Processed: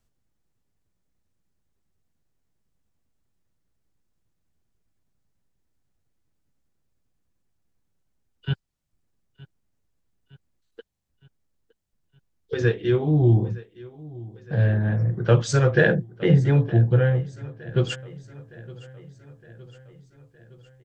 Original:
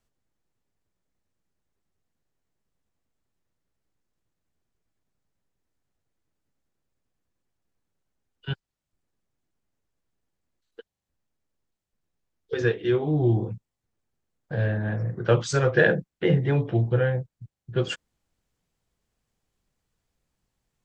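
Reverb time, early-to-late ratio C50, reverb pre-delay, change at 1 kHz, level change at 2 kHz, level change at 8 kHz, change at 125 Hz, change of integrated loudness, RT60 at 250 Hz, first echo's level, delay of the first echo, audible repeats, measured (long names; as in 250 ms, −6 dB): no reverb audible, no reverb audible, no reverb audible, 0.0 dB, 0.0 dB, +2.0 dB, +5.5 dB, +3.0 dB, no reverb audible, −20.5 dB, 914 ms, 4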